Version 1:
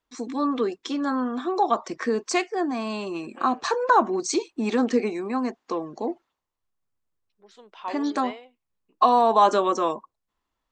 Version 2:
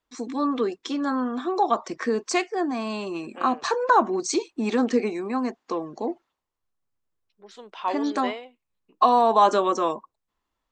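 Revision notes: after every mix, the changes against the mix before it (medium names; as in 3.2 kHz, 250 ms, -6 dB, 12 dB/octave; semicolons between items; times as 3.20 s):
second voice +6.0 dB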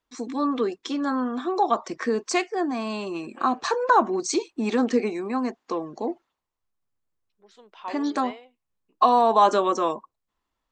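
second voice -8.0 dB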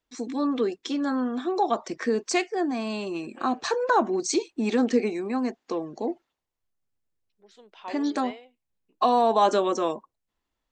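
master: add peaking EQ 1.1 kHz -6.5 dB 0.68 oct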